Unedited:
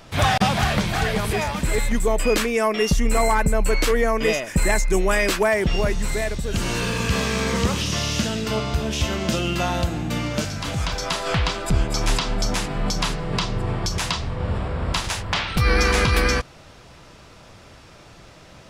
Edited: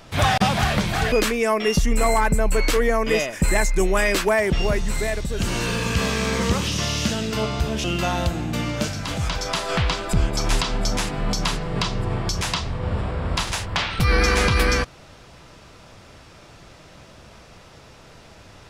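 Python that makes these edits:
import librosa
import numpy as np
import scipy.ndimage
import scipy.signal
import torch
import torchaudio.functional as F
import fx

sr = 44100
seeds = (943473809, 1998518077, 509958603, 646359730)

y = fx.edit(x, sr, fx.cut(start_s=1.12, length_s=1.14),
    fx.cut(start_s=8.98, length_s=0.43), tone=tone)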